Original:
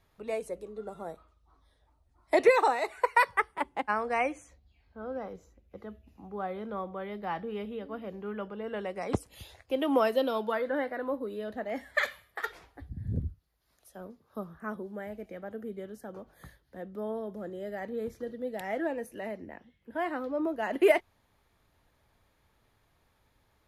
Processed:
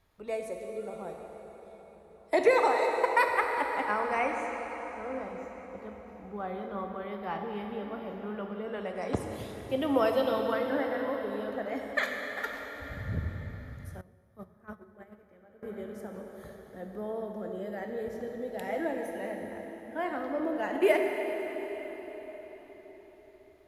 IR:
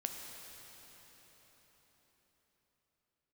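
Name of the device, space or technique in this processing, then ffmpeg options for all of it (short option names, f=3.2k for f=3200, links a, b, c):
cathedral: -filter_complex "[1:a]atrim=start_sample=2205[a];[0:a][a]afir=irnorm=-1:irlink=0,asettb=1/sr,asplit=3[b][c][d];[b]atrim=end=14.014[e];[c]atrim=start=14.01:end=15.63,asetpts=PTS-STARTPTS,afade=t=in:d=0.004:c=qsin,afade=t=out:st=1.616:d=0.004:c=qsin,agate=range=-17dB:threshold=-35dB:ratio=16:detection=peak[f];[d]atrim=start=15.626[g];[e][f]acrossfade=d=0.004:c1=hsin:c2=qsin[h];[h][g]acrossfade=d=0.004:c1=qsin:c2=hsin"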